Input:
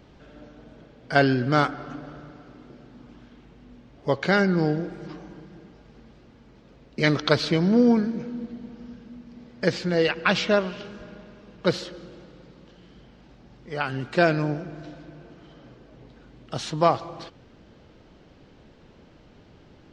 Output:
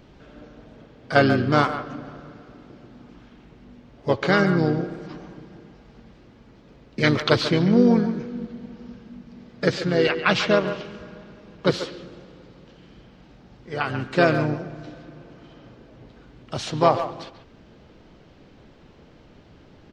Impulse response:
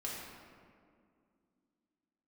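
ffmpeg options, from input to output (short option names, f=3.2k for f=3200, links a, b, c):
-filter_complex "[0:a]asplit=2[a][b];[b]adelay=140,highpass=300,lowpass=3.4k,asoftclip=type=hard:threshold=-11dB,volume=-10dB[c];[a][c]amix=inputs=2:normalize=0,asplit=2[d][e];[e]asetrate=35002,aresample=44100,atempo=1.25992,volume=-7dB[f];[d][f]amix=inputs=2:normalize=0,volume=1dB"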